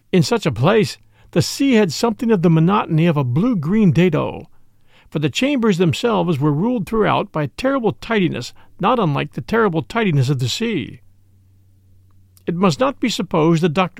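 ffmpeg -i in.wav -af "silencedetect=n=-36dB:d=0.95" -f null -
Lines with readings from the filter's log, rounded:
silence_start: 10.96
silence_end: 12.37 | silence_duration: 1.41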